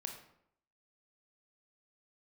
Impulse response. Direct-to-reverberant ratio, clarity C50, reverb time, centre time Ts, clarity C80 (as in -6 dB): 3.0 dB, 6.5 dB, 0.70 s, 24 ms, 9.5 dB